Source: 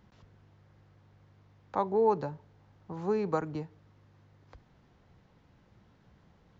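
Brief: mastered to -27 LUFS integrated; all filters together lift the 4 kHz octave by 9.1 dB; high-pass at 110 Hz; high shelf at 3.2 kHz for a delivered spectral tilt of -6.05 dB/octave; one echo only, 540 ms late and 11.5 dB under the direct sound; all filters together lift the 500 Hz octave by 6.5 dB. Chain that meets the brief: high-pass 110 Hz; peaking EQ 500 Hz +7.5 dB; treble shelf 3.2 kHz +5 dB; peaking EQ 4 kHz +6.5 dB; delay 540 ms -11.5 dB

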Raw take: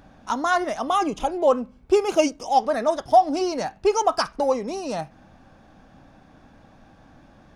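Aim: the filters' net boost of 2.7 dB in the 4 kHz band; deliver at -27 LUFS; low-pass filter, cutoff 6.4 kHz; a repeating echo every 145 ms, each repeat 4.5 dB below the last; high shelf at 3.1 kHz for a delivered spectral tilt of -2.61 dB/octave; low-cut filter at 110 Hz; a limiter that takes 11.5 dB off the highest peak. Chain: high-pass 110 Hz; low-pass 6.4 kHz; treble shelf 3.1 kHz -4.5 dB; peaking EQ 4 kHz +8.5 dB; peak limiter -17 dBFS; feedback delay 145 ms, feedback 60%, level -4.5 dB; trim -1.5 dB

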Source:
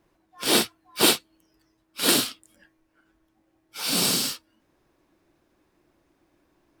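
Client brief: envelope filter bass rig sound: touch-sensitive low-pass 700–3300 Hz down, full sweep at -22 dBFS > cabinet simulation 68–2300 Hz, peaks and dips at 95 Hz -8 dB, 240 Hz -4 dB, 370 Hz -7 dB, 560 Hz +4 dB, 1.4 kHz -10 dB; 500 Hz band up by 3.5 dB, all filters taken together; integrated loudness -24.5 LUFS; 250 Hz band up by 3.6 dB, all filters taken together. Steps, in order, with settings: peaking EQ 250 Hz +8 dB; peaking EQ 500 Hz +3.5 dB; touch-sensitive low-pass 700–3300 Hz down, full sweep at -22 dBFS; cabinet simulation 68–2300 Hz, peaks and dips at 95 Hz -8 dB, 240 Hz -4 dB, 370 Hz -7 dB, 560 Hz +4 dB, 1.4 kHz -10 dB; trim -2 dB

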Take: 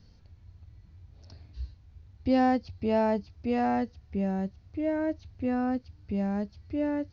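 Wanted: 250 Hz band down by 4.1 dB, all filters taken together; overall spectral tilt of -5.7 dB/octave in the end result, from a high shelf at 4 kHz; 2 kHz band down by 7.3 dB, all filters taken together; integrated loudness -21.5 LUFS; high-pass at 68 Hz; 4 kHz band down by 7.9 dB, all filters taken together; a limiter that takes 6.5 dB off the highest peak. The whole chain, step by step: high-pass 68 Hz; peaking EQ 250 Hz -4.5 dB; peaking EQ 2 kHz -7.5 dB; treble shelf 4 kHz -4 dB; peaking EQ 4 kHz -5.5 dB; trim +13 dB; peak limiter -10.5 dBFS

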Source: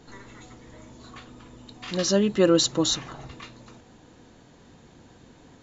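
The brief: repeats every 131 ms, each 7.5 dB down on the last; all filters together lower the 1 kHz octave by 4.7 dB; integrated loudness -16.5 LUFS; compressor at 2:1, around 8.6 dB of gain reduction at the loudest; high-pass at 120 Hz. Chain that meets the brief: high-pass 120 Hz; peaking EQ 1 kHz -6.5 dB; compression 2:1, threshold -31 dBFS; feedback delay 131 ms, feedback 42%, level -7.5 dB; trim +14 dB

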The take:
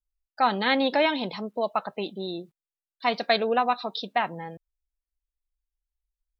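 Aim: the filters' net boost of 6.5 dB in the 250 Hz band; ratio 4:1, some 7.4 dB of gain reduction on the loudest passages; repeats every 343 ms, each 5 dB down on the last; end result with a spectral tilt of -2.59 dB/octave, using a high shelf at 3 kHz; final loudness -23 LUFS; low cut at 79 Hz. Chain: high-pass 79 Hz; peaking EQ 250 Hz +7.5 dB; treble shelf 3 kHz +6.5 dB; compression 4:1, threshold -24 dBFS; feedback delay 343 ms, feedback 56%, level -5 dB; trim +5.5 dB

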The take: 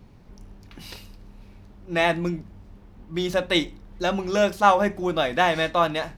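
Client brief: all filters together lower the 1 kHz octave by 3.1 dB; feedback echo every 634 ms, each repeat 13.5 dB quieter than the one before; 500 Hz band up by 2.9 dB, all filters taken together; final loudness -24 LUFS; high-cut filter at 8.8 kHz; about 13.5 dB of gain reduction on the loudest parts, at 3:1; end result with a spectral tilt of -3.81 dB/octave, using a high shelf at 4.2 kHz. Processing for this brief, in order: low-pass 8.8 kHz; peaking EQ 500 Hz +6.5 dB; peaking EQ 1 kHz -7.5 dB; treble shelf 4.2 kHz +3 dB; compression 3:1, threshold -33 dBFS; feedback delay 634 ms, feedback 21%, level -13.5 dB; trim +10.5 dB

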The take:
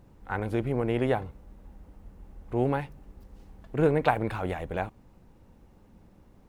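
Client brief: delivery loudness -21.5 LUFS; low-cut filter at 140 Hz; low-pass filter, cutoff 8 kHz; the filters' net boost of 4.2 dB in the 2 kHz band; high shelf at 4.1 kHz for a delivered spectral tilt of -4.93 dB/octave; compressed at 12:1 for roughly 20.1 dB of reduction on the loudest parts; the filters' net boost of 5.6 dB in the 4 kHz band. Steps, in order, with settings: high-pass 140 Hz; low-pass 8 kHz; peaking EQ 2 kHz +5 dB; peaking EQ 4 kHz +7.5 dB; treble shelf 4.1 kHz -4 dB; compression 12:1, threshold -38 dBFS; trim +23 dB

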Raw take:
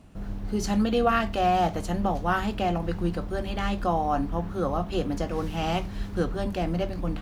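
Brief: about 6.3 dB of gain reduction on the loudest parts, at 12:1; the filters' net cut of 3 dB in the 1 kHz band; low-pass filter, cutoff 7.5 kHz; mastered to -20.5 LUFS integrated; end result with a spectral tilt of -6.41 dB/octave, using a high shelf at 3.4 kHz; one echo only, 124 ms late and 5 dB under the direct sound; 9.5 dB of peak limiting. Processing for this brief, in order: low-pass 7.5 kHz; peaking EQ 1 kHz -4 dB; treble shelf 3.4 kHz -8 dB; compression 12:1, threshold -26 dBFS; peak limiter -28.5 dBFS; delay 124 ms -5 dB; trim +15.5 dB

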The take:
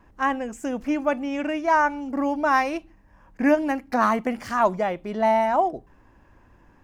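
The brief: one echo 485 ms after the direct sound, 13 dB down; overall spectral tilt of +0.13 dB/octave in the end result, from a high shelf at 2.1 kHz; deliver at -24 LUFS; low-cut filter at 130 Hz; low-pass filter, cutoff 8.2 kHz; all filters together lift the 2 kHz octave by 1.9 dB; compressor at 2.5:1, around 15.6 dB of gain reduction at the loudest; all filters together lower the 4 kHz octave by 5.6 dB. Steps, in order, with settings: high-pass 130 Hz; low-pass 8.2 kHz; peaking EQ 2 kHz +7 dB; treble shelf 2.1 kHz -6 dB; peaking EQ 4 kHz -6.5 dB; compression 2.5:1, threshold -39 dBFS; delay 485 ms -13 dB; trim +12.5 dB

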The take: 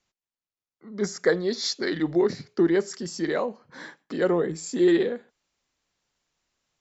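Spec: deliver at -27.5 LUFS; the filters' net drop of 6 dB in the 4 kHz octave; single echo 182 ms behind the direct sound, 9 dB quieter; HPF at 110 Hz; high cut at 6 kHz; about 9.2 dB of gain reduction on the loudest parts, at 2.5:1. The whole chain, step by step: high-pass 110 Hz; low-pass 6 kHz; peaking EQ 4 kHz -6 dB; compression 2.5:1, threshold -30 dBFS; delay 182 ms -9 dB; trim +5 dB

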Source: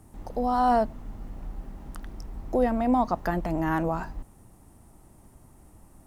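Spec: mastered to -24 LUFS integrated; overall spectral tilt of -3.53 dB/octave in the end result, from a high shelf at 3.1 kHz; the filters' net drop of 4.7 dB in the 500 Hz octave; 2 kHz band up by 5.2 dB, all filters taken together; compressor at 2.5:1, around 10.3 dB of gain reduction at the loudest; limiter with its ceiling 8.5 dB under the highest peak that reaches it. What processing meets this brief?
peaking EQ 500 Hz -7 dB; peaking EQ 2 kHz +6 dB; treble shelf 3.1 kHz +4.5 dB; compression 2.5:1, threshold -36 dBFS; trim +16 dB; peak limiter -12.5 dBFS

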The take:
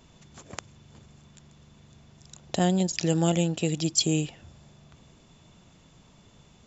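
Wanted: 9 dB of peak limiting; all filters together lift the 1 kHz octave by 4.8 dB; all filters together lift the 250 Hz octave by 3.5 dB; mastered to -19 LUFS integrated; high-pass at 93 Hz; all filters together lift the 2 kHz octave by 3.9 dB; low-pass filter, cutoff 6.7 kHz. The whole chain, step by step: high-pass 93 Hz; low-pass 6.7 kHz; peaking EQ 250 Hz +6 dB; peaking EQ 1 kHz +6.5 dB; peaking EQ 2 kHz +3.5 dB; trim +8 dB; peak limiter -8.5 dBFS

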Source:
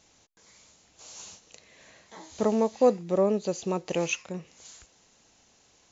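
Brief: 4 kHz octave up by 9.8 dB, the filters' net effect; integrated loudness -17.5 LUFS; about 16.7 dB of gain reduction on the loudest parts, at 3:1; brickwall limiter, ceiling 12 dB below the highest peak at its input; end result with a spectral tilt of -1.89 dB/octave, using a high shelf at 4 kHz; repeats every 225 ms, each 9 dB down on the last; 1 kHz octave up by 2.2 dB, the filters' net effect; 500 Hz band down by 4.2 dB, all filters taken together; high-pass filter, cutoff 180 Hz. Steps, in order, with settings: high-pass 180 Hz; peaking EQ 500 Hz -6 dB; peaking EQ 1 kHz +4.5 dB; treble shelf 4 kHz +7.5 dB; peaking EQ 4 kHz +8.5 dB; compression 3:1, threshold -41 dBFS; peak limiter -33.5 dBFS; feedback delay 225 ms, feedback 35%, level -9 dB; trim +27 dB

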